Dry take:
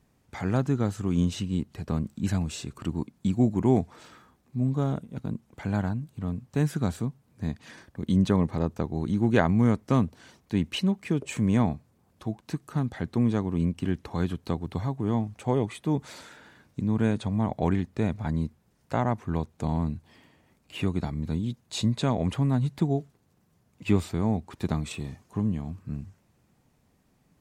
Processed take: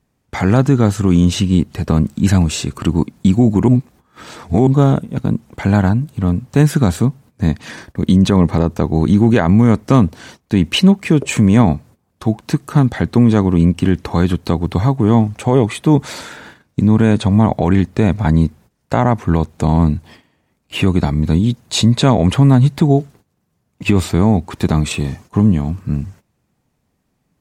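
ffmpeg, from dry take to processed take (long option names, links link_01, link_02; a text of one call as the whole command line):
ffmpeg -i in.wav -filter_complex "[0:a]asplit=3[link_01][link_02][link_03];[link_01]atrim=end=3.682[link_04];[link_02]atrim=start=3.678:end=4.672,asetpts=PTS-STARTPTS,areverse[link_05];[link_03]atrim=start=4.668[link_06];[link_04][link_05]acrossfade=duration=0.004:curve1=hsin:curve2=hsin[link_07];[link_07][link_06]acrossfade=duration=0.004:curve1=hsin:curve2=hsin,agate=range=-16dB:threshold=-53dB:ratio=16:detection=peak,alimiter=level_in=16.5dB:limit=-1dB:release=50:level=0:latency=1,volume=-1dB" out.wav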